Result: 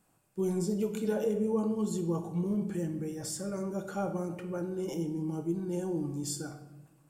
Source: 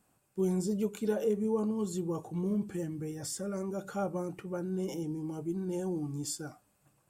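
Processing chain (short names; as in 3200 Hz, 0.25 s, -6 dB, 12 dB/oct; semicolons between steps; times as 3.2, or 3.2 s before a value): shoebox room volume 440 m³, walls mixed, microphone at 0.64 m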